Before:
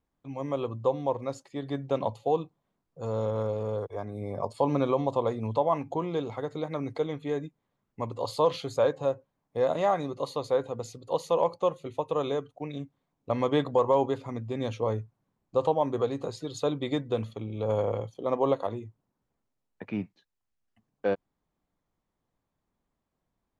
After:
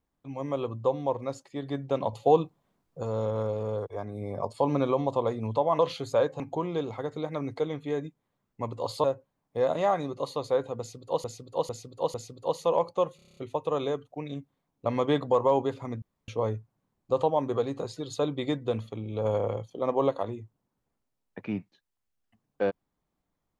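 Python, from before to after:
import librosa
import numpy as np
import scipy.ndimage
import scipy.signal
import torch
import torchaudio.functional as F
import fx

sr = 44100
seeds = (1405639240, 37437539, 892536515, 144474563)

y = fx.edit(x, sr, fx.clip_gain(start_s=2.13, length_s=0.9, db=5.5),
    fx.move(start_s=8.43, length_s=0.61, to_s=5.79),
    fx.repeat(start_s=10.79, length_s=0.45, count=4),
    fx.stutter(start_s=11.81, slice_s=0.03, count=8),
    fx.room_tone_fill(start_s=14.46, length_s=0.26), tone=tone)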